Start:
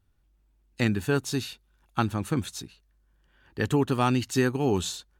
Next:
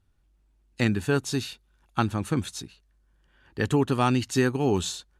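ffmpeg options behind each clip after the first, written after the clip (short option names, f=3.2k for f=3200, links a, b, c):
-af "lowpass=f=12k:w=0.5412,lowpass=f=12k:w=1.3066,volume=1dB"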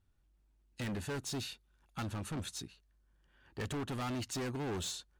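-af "volume=29.5dB,asoftclip=hard,volume=-29.5dB,volume=-6dB"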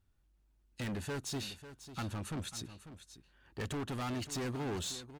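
-af "aecho=1:1:545:0.224"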